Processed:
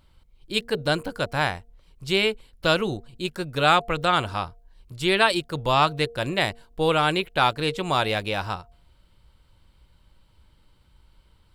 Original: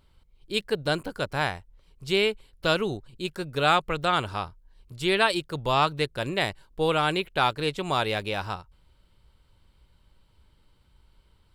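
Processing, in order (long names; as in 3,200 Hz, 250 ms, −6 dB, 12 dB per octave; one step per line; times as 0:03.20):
notch filter 410 Hz, Q 12
hum removal 233.2 Hz, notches 3
level +3 dB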